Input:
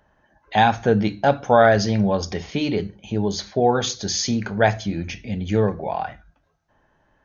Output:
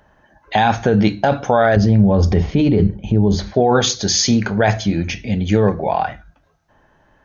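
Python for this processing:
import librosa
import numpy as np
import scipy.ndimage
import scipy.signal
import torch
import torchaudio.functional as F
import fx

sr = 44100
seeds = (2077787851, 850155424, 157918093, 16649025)

p1 = fx.tilt_eq(x, sr, slope=-3.5, at=(1.76, 3.54))
p2 = fx.over_compress(p1, sr, threshold_db=-19.0, ratio=-0.5)
p3 = p1 + (p2 * librosa.db_to_amplitude(2.0))
y = p3 * librosa.db_to_amplitude(-2.0)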